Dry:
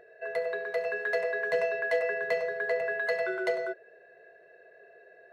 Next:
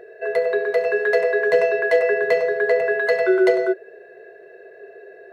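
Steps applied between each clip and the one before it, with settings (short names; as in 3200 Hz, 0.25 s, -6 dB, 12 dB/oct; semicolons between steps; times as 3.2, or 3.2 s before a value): bell 390 Hz +12 dB 0.44 oct; gain +8 dB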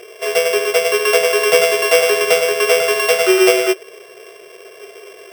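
sample sorter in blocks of 16 samples; gain +4.5 dB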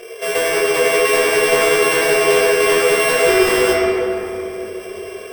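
soft clip -15.5 dBFS, distortion -9 dB; shoebox room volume 150 m³, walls hard, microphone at 0.69 m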